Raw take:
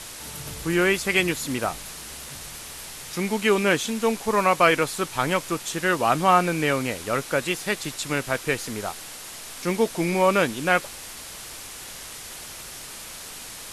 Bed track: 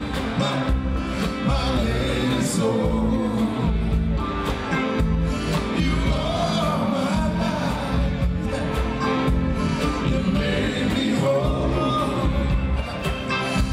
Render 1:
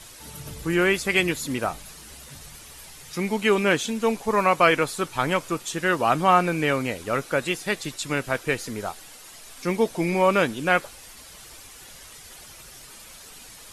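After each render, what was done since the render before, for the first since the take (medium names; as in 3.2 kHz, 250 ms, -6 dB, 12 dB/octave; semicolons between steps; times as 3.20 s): noise reduction 9 dB, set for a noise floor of -39 dBFS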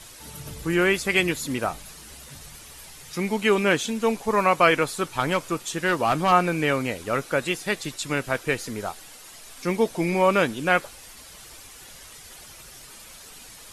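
5.20–6.32 s: hard clipper -15 dBFS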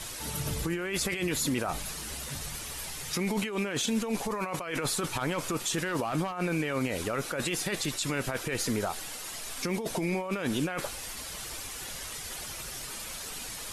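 compressor with a negative ratio -29 dBFS, ratio -1; peak limiter -20.5 dBFS, peak gain reduction 9 dB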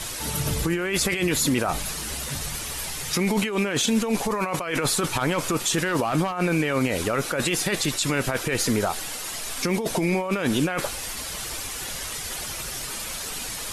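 trim +7 dB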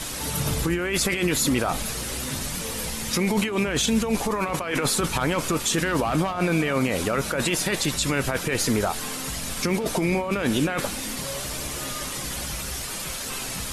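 add bed track -15.5 dB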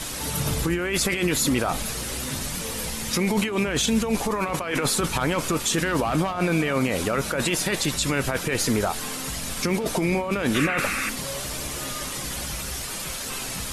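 10.54–11.10 s: painted sound noise 1.1–2.8 kHz -28 dBFS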